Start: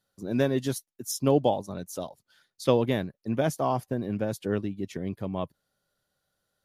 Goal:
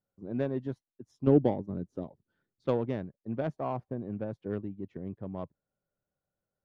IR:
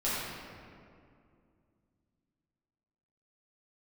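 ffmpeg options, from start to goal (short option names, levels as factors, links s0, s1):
-filter_complex "[0:a]adynamicsmooth=sensitivity=0.5:basefreq=1100,asettb=1/sr,asplit=3[s0][s1][s2];[s0]atrim=end=1.274[s3];[s1]atrim=start=1.27:end=2.67,asetpts=PTS-STARTPTS,afade=t=in:d=0.004:c=qsin,afade=t=out:st=1.396:d=0.004:c=qsin,lowshelf=f=480:t=q:w=1.5:g=7[s4];[s2]atrim=start=2.666[s5];[s3][s4]acrossfade=d=0.004:c1=hsin:c2=qsin[s6];[s6][s5]acrossfade=d=0.004:c1=qsin:c2=hsin,volume=0.501"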